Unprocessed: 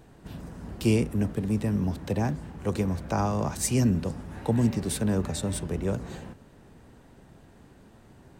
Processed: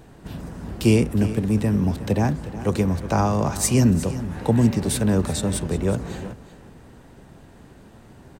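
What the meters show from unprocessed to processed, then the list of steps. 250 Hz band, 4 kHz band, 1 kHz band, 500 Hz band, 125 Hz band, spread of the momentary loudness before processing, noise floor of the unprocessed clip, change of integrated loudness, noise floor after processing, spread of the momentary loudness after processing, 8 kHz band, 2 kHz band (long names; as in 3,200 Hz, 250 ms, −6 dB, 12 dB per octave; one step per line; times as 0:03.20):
+6.0 dB, +6.0 dB, +6.0 dB, +6.0 dB, +6.0 dB, 16 LU, −54 dBFS, +6.0 dB, −48 dBFS, 16 LU, +6.0 dB, +6.0 dB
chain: single-tap delay 363 ms −14.5 dB
level +6 dB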